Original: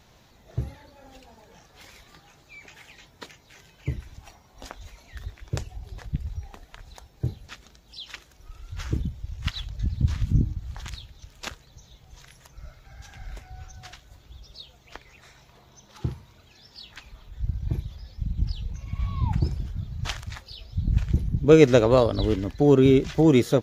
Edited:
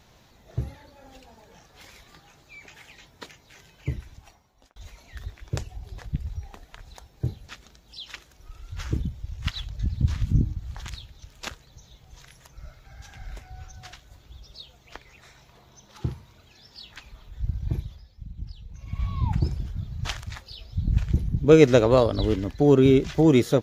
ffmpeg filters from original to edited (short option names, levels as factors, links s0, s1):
-filter_complex "[0:a]asplit=4[s0][s1][s2][s3];[s0]atrim=end=4.76,asetpts=PTS-STARTPTS,afade=t=out:st=3.96:d=0.8[s4];[s1]atrim=start=4.76:end=18.08,asetpts=PTS-STARTPTS,afade=t=in:d=0.004:c=hsin,afade=t=out:st=13.05:d=0.27:silence=0.298538[s5];[s2]atrim=start=18.08:end=18.69,asetpts=PTS-STARTPTS,volume=0.299[s6];[s3]atrim=start=18.69,asetpts=PTS-STARTPTS,afade=t=in:d=0.27:silence=0.298538[s7];[s4][s5][s6][s7]concat=n=4:v=0:a=1"